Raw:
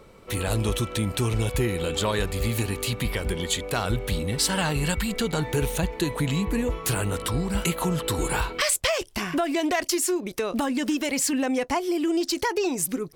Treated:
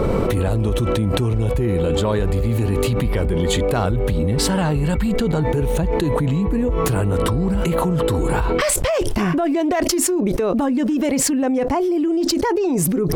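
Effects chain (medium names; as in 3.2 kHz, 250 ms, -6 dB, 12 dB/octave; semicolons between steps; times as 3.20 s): tilt shelf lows +8.5 dB, about 1.4 kHz; level flattener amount 100%; trim -5.5 dB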